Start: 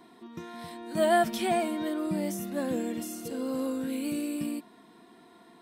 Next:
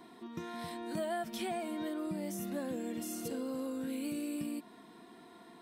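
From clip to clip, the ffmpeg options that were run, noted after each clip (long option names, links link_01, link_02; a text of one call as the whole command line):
ffmpeg -i in.wav -af "acompressor=threshold=-35dB:ratio=6" out.wav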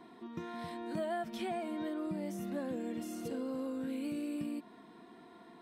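ffmpeg -i in.wav -af "highshelf=frequency=5100:gain=-11.5" out.wav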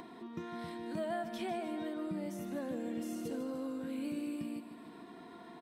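ffmpeg -i in.wav -af "aecho=1:1:151|302|453|604|755:0.316|0.158|0.0791|0.0395|0.0198,acompressor=mode=upward:threshold=-43dB:ratio=2.5,volume=-1dB" out.wav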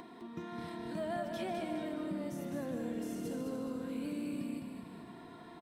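ffmpeg -i in.wav -filter_complex "[0:a]asplit=6[link_01][link_02][link_03][link_04][link_05][link_06];[link_02]adelay=208,afreqshift=-34,volume=-5.5dB[link_07];[link_03]adelay=416,afreqshift=-68,volume=-12.6dB[link_08];[link_04]adelay=624,afreqshift=-102,volume=-19.8dB[link_09];[link_05]adelay=832,afreqshift=-136,volume=-26.9dB[link_10];[link_06]adelay=1040,afreqshift=-170,volume=-34dB[link_11];[link_01][link_07][link_08][link_09][link_10][link_11]amix=inputs=6:normalize=0,volume=-1dB" out.wav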